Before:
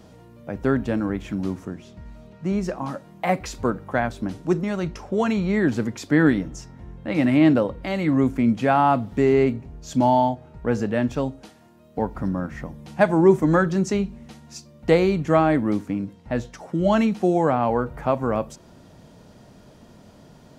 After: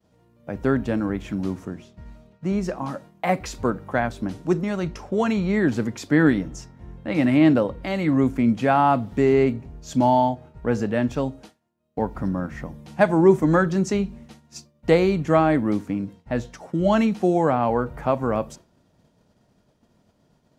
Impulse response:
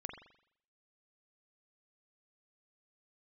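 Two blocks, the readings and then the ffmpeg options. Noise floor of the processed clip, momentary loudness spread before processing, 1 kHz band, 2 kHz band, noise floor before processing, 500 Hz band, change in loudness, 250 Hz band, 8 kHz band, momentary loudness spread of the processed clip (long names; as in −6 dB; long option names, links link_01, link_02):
−64 dBFS, 14 LU, 0.0 dB, 0.0 dB, −50 dBFS, 0.0 dB, 0.0 dB, 0.0 dB, 0.0 dB, 13 LU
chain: -af "agate=range=-33dB:threshold=-38dB:ratio=3:detection=peak"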